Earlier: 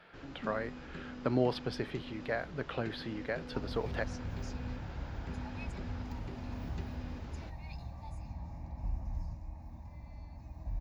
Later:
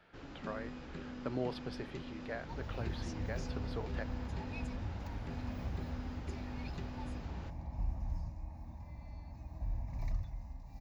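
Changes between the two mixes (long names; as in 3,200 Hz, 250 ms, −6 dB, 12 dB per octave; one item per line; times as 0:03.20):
speech −7.5 dB
second sound: entry −1.05 s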